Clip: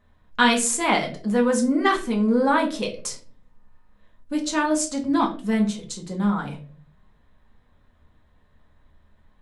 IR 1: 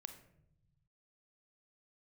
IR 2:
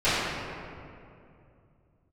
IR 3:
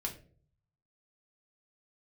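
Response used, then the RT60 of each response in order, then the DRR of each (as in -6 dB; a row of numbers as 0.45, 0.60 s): 3; 0.75, 2.6, 0.45 s; 7.5, -17.5, 0.5 dB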